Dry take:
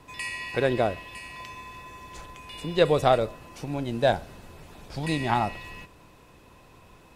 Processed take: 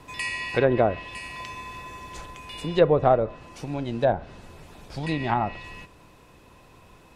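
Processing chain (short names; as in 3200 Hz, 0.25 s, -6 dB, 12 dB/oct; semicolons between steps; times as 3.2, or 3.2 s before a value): treble ducked by the level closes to 1200 Hz, closed at -18 dBFS; vocal rider within 4 dB 2 s; gain +1 dB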